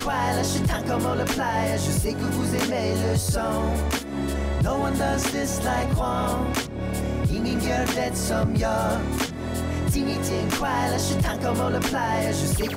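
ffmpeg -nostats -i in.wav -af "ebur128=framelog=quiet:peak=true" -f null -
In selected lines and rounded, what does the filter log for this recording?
Integrated loudness:
  I:         -24.5 LUFS
  Threshold: -34.5 LUFS
Loudness range:
  LRA:         0.8 LU
  Threshold: -44.7 LUFS
  LRA low:   -25.0 LUFS
  LRA high:  -24.2 LUFS
True peak:
  Peak:      -13.8 dBFS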